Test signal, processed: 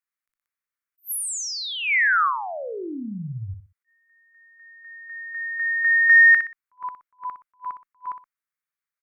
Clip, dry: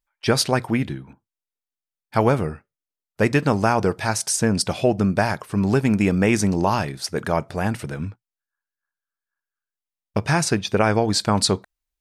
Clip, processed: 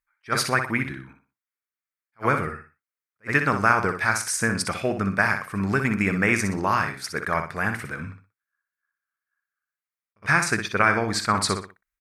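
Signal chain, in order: band shelf 1600 Hz +12.5 dB 1.3 oct; added harmonics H 3 -38 dB, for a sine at 3.5 dBFS; high shelf 9400 Hz +6.5 dB; on a send: feedback echo 61 ms, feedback 29%, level -8 dB; on the sum: attack slew limiter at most 450 dB/s; gain -6.5 dB

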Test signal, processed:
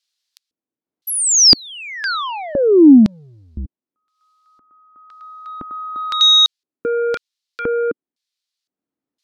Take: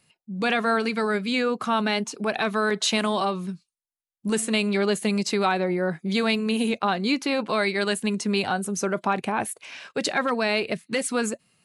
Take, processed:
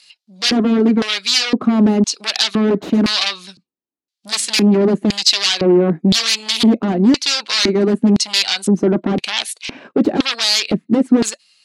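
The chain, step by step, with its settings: transient shaper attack 0 dB, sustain -6 dB; sine folder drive 13 dB, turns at -10 dBFS; LFO band-pass square 0.98 Hz 280–4300 Hz; gain +8 dB

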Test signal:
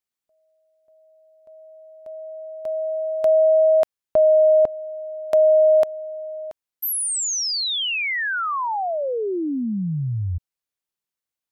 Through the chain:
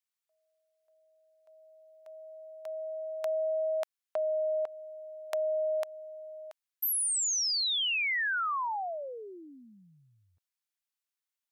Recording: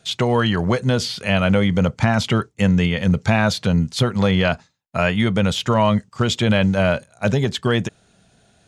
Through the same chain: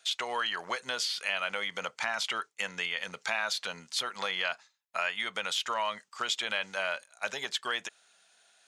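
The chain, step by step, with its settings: HPF 1100 Hz 12 dB/oct; compressor 2:1, threshold -28 dBFS; gain -2.5 dB

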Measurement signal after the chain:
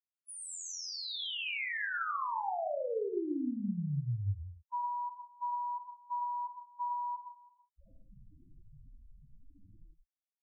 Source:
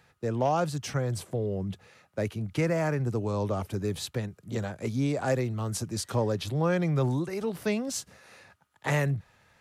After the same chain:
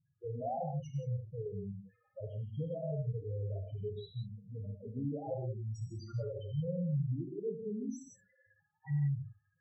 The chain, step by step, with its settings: loudest bins only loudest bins 2; non-linear reverb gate 0.2 s flat, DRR 1.5 dB; gain -7.5 dB

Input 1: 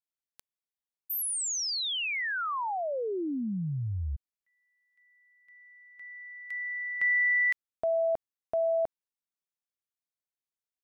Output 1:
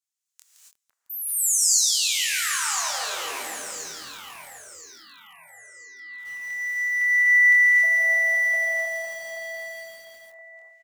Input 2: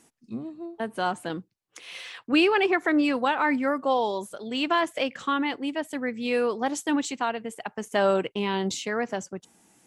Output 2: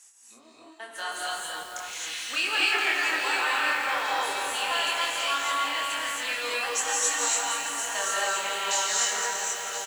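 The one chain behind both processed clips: HPF 1200 Hz 12 dB/oct; bell 7100 Hz +12 dB 0.97 oct; in parallel at -2 dB: compressor 6:1, threshold -40 dBFS; on the sum: short-mantissa float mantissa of 6-bit; doubler 25 ms -3.5 dB; on a send: echo with dull and thin repeats by turns 0.511 s, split 1600 Hz, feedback 63%, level -5 dB; on the sum: non-linear reverb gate 0.3 s rising, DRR -4 dB; lo-fi delay 0.167 s, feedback 80%, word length 6-bit, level -7.5 dB; gain -6.5 dB

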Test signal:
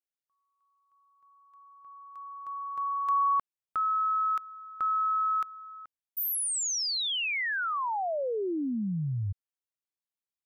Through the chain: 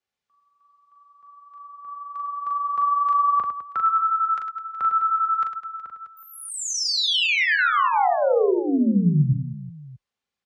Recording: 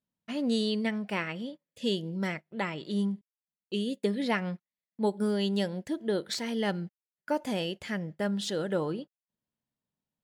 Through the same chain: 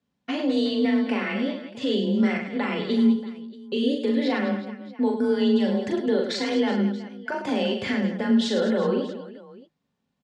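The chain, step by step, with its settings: frequency shift +30 Hz; in parallel at -3 dB: compressor, threshold -39 dBFS; on the sum: vibrato 11 Hz 14 cents; limiter -24 dBFS; air absorption 110 m; notch comb 320 Hz; on a send: reverse bouncing-ball echo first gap 40 ms, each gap 1.6×, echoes 5; on the sum: gain +8.5 dB

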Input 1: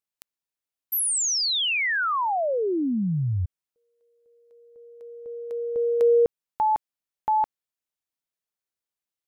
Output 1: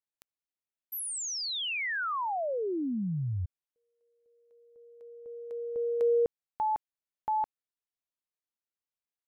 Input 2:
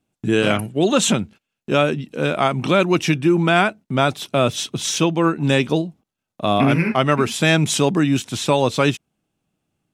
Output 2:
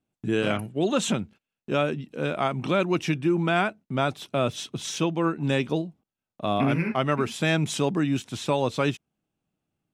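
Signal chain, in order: high shelf 3800 Hz -5 dB; gain -7 dB

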